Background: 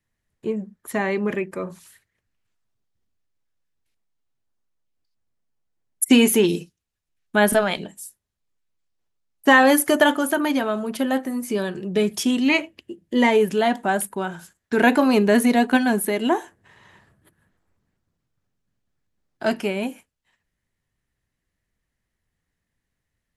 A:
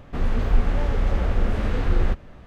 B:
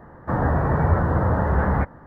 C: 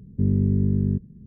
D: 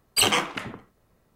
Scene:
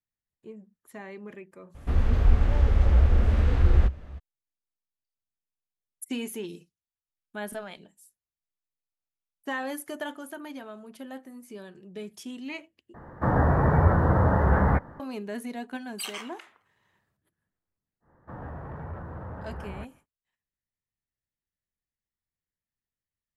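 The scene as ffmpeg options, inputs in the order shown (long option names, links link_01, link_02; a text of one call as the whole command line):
ffmpeg -i bed.wav -i cue0.wav -i cue1.wav -i cue2.wav -i cue3.wav -filter_complex "[2:a]asplit=2[link_01][link_02];[0:a]volume=-18.5dB[link_03];[1:a]equalizer=frequency=66:width_type=o:width=0.74:gain=14[link_04];[4:a]highpass=940[link_05];[link_02]asoftclip=type=tanh:threshold=-12dB[link_06];[link_03]asplit=2[link_07][link_08];[link_07]atrim=end=12.944[link_09];[link_01]atrim=end=2.06,asetpts=PTS-STARTPTS,volume=-1dB[link_10];[link_08]atrim=start=14.996[link_11];[link_04]atrim=end=2.46,asetpts=PTS-STARTPTS,volume=-4dB,afade=type=in:duration=0.02,afade=type=out:start_time=2.44:duration=0.02,adelay=1740[link_12];[link_05]atrim=end=1.35,asetpts=PTS-STARTPTS,volume=-15dB,afade=type=in:duration=0.004:curve=hsin,afade=type=out:start_time=1.346:duration=0.004:curve=hsin,adelay=15820[link_13];[link_06]atrim=end=2.06,asetpts=PTS-STARTPTS,volume=-17.5dB,afade=type=in:duration=0.1,afade=type=out:start_time=1.96:duration=0.1,adelay=18000[link_14];[link_09][link_10]acrossfade=duration=0.004:curve1=hsin:curve2=hsin[link_15];[link_15][link_11]acrossfade=duration=0.004:curve1=hsin:curve2=hsin[link_16];[link_16][link_12][link_13][link_14]amix=inputs=4:normalize=0" out.wav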